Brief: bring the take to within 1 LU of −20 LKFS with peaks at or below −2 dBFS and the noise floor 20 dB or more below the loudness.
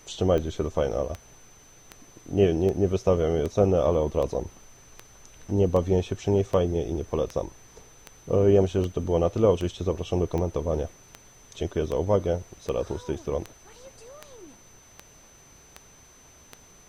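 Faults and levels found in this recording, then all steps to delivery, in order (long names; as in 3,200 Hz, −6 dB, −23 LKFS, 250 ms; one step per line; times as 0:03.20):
number of clicks 22; interfering tone 6,100 Hz; level of the tone −54 dBFS; integrated loudness −25.5 LKFS; sample peak −9.0 dBFS; target loudness −20.0 LKFS
→ click removal
notch filter 6,100 Hz, Q 30
level +5.5 dB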